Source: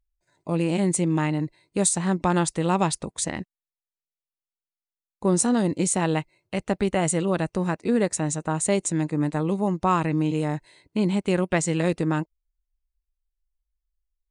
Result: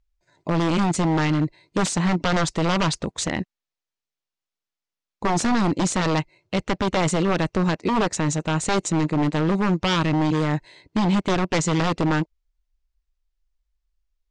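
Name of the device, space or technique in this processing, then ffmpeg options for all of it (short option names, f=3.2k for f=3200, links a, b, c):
synthesiser wavefolder: -af "aeval=exprs='0.0944*(abs(mod(val(0)/0.0944+3,4)-2)-1)':c=same,lowpass=f=6.7k:w=0.5412,lowpass=f=6.7k:w=1.3066,volume=6dB"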